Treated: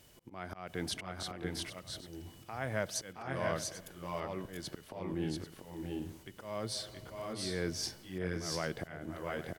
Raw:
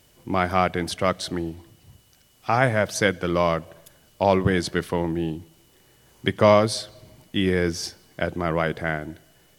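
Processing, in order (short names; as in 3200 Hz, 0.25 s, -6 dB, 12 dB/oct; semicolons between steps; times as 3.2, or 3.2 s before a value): compressor 3:1, threshold -29 dBFS, peak gain reduction 14 dB; auto swell 0.3 s; tapped delay 0.67/0.692/0.791 s -6.5/-3.5/-14 dB; gain -3.5 dB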